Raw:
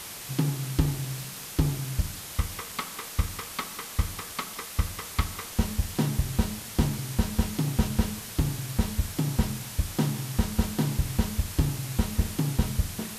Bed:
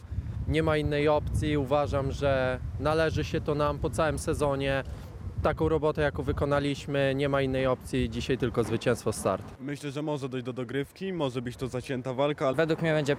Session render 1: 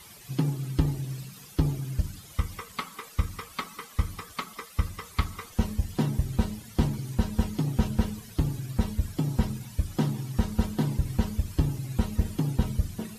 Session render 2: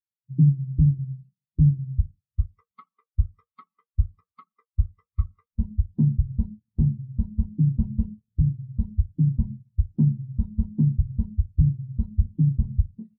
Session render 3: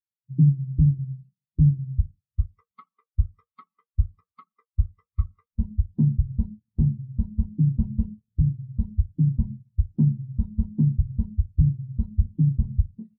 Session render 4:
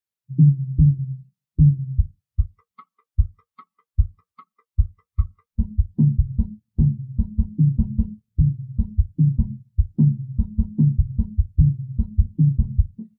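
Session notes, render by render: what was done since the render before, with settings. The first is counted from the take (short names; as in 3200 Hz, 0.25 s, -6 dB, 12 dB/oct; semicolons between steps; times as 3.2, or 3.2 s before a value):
denoiser 14 dB, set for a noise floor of -40 dBFS
sample leveller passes 2; spectral expander 2.5:1
nothing audible
gain +3.5 dB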